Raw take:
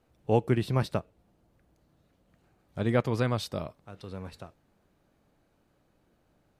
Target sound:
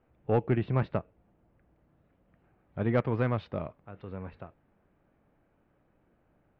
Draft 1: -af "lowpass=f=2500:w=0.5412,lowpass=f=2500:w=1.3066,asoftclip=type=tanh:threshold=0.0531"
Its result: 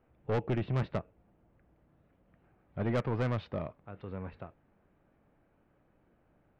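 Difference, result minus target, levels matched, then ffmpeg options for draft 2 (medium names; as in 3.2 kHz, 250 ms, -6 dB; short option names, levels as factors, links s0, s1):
saturation: distortion +10 dB
-af "lowpass=f=2500:w=0.5412,lowpass=f=2500:w=1.3066,asoftclip=type=tanh:threshold=0.178"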